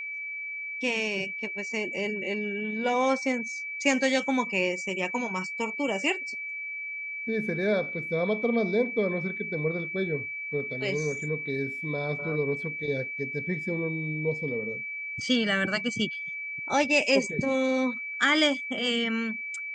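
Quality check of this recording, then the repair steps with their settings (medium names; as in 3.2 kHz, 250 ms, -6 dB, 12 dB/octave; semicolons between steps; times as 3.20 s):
whine 2.3 kHz -33 dBFS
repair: band-stop 2.3 kHz, Q 30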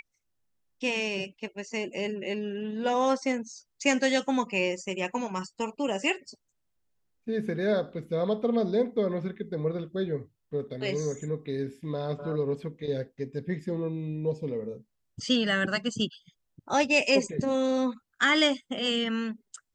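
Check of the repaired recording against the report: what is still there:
nothing left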